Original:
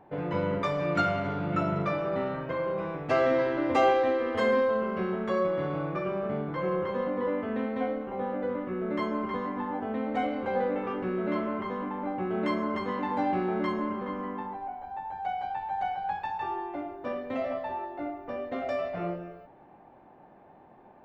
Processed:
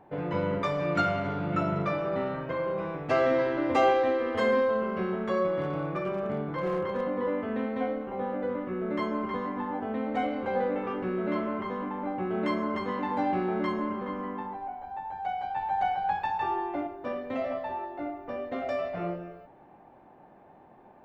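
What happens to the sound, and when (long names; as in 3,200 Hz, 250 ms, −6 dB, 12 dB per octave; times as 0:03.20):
0:05.61–0:07.01: hard clipping −23.5 dBFS
0:15.56–0:16.87: clip gain +3.5 dB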